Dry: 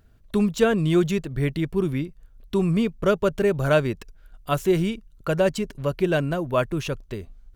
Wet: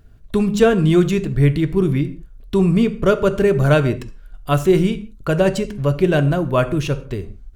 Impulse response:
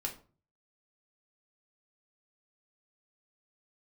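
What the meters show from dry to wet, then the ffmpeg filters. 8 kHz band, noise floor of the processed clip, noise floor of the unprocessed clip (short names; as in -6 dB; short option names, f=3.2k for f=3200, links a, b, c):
+4.0 dB, -42 dBFS, -54 dBFS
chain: -filter_complex "[0:a]lowshelf=f=220:g=6,asplit=2[a][b];[1:a]atrim=start_sample=2205,afade=t=out:st=0.14:d=0.01,atrim=end_sample=6615,asetrate=22491,aresample=44100[c];[b][c]afir=irnorm=-1:irlink=0,volume=-10dB[d];[a][d]amix=inputs=2:normalize=0,volume=1dB"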